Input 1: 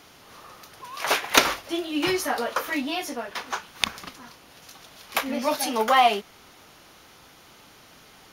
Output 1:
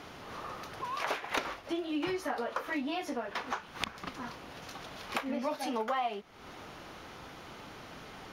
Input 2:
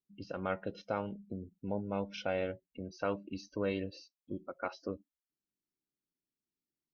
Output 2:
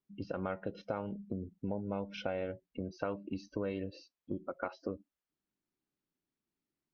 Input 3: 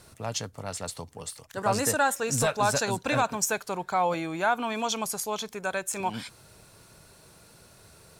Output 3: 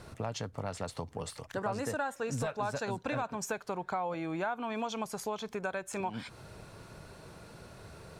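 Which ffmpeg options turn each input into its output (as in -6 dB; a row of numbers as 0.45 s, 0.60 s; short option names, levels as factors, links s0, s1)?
-af "lowpass=f=1900:p=1,acompressor=threshold=0.01:ratio=4,volume=2"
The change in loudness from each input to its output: -12.0 LU, -1.0 LU, -8.0 LU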